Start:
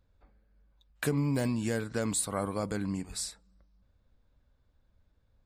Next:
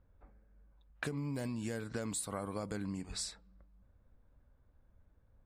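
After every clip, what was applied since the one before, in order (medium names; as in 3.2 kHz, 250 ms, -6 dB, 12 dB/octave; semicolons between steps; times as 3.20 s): level-controlled noise filter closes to 1.7 kHz, open at -29 dBFS; compression 6:1, threshold -38 dBFS, peak gain reduction 13.5 dB; trim +2 dB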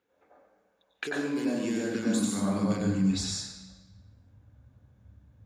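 high-pass sweep 490 Hz -> 110 Hz, 0.82–3.20 s; reverberation RT60 1.0 s, pre-delay 85 ms, DRR -1 dB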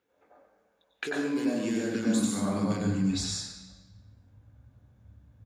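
doubling 18 ms -11 dB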